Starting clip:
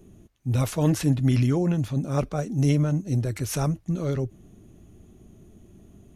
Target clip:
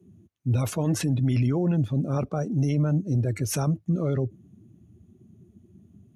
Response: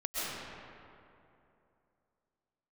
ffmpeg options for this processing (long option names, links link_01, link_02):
-af "highpass=frequency=77:width=0.5412,highpass=frequency=77:width=1.3066,afftdn=noise_reduction=16:noise_floor=-40,alimiter=limit=-19dB:level=0:latency=1:release=27,volume=2.5dB"